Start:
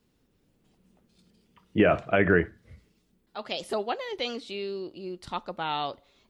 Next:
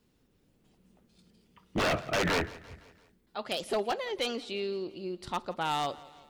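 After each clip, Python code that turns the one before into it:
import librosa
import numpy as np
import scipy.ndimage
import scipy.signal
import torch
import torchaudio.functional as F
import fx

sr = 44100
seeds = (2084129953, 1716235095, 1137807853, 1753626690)

y = 10.0 ** (-22.0 / 20.0) * (np.abs((x / 10.0 ** (-22.0 / 20.0) + 3.0) % 4.0 - 2.0) - 1.0)
y = fx.echo_feedback(y, sr, ms=170, feedback_pct=54, wet_db=-20.0)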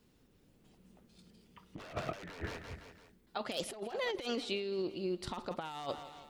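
y = fx.over_compress(x, sr, threshold_db=-35.0, ratio=-0.5)
y = F.gain(torch.from_numpy(y), -2.5).numpy()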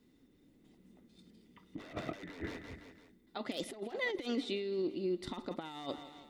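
y = fx.small_body(x, sr, hz=(280.0, 2000.0, 3600.0), ring_ms=25, db=12)
y = F.gain(torch.from_numpy(y), -5.0).numpy()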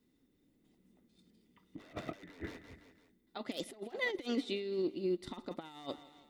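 y = fx.high_shelf(x, sr, hz=9200.0, db=6.0)
y = fx.upward_expand(y, sr, threshold_db=-48.0, expansion=1.5)
y = F.gain(torch.from_numpy(y), 1.5).numpy()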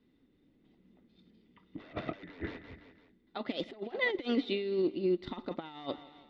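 y = scipy.signal.sosfilt(scipy.signal.butter(4, 4000.0, 'lowpass', fs=sr, output='sos'), x)
y = F.gain(torch.from_numpy(y), 4.5).numpy()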